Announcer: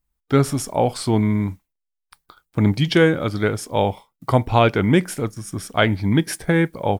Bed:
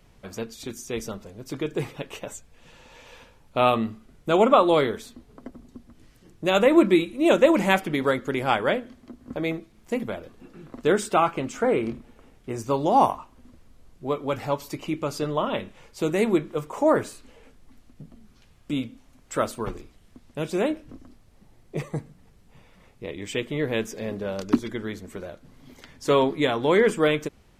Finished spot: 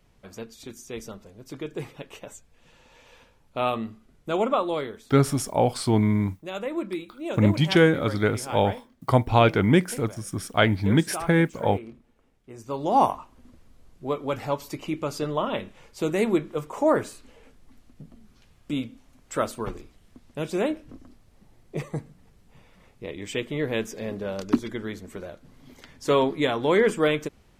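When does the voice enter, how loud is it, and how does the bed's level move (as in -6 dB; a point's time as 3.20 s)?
4.80 s, -2.5 dB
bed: 4.38 s -5.5 dB
5.36 s -13 dB
12.49 s -13 dB
12.97 s -1 dB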